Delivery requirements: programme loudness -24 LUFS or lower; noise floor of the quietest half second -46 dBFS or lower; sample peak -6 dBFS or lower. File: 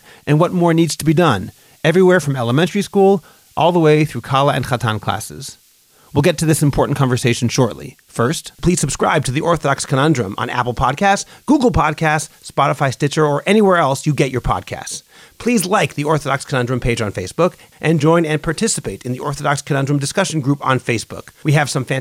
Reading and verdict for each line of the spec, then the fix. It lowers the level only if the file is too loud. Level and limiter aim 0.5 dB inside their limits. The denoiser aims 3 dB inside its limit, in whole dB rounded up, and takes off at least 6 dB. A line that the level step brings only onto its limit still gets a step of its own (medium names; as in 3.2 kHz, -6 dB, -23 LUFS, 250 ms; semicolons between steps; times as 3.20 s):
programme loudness -16.5 LUFS: fail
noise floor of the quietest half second -52 dBFS: pass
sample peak -2.5 dBFS: fail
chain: trim -8 dB